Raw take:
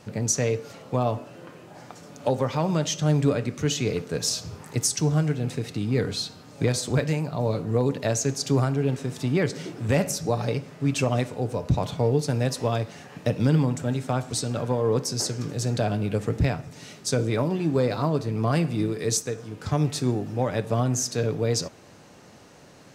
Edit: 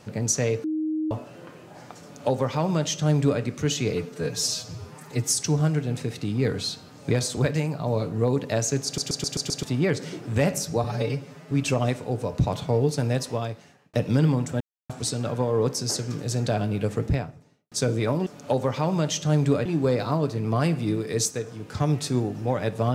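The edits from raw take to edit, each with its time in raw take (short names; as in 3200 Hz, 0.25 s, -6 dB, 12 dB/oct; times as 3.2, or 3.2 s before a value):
0.64–1.11 bleep 312 Hz -23.5 dBFS
2.03–3.42 copy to 17.57
3.95–4.89 stretch 1.5×
8.38 stutter in place 0.13 s, 6 plays
10.37–10.82 stretch 1.5×
12.43–13.24 fade out linear
13.91–14.2 mute
16.23–17.02 studio fade out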